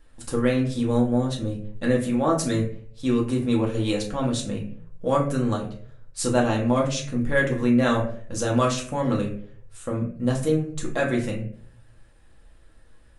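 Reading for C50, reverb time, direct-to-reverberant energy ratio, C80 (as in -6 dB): 8.0 dB, 0.55 s, -2.0 dB, 12.5 dB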